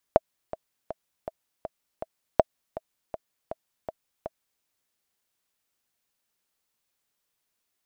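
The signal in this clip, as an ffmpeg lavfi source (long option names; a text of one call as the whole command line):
ffmpeg -f lavfi -i "aevalsrc='pow(10,(-3-16.5*gte(mod(t,6*60/161),60/161))/20)*sin(2*PI*644*mod(t,60/161))*exp(-6.91*mod(t,60/161)/0.03)':duration=4.47:sample_rate=44100" out.wav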